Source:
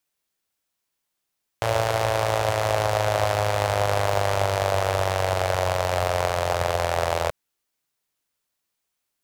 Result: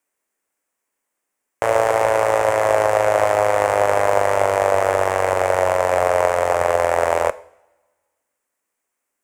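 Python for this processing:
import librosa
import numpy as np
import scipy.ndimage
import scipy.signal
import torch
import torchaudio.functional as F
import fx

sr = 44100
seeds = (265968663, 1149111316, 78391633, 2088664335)

y = fx.graphic_eq(x, sr, hz=(125, 250, 500, 1000, 2000, 4000, 8000), db=(-8, 8, 9, 6, 9, -10, 9))
y = fx.rev_double_slope(y, sr, seeds[0], early_s=0.53, late_s=1.5, knee_db=-17, drr_db=15.0)
y = F.gain(torch.from_numpy(y), -3.0).numpy()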